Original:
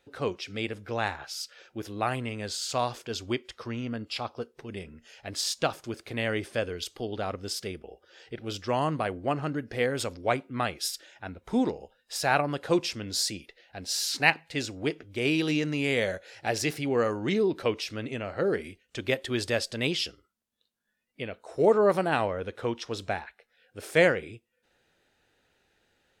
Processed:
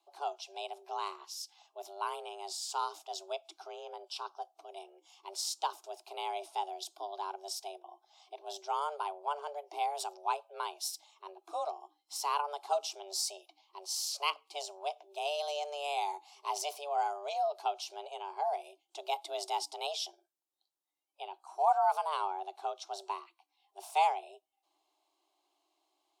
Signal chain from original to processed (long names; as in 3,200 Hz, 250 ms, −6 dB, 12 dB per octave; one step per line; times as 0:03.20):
frequency shifter +290 Hz
phaser with its sweep stopped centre 490 Hz, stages 6
level −5 dB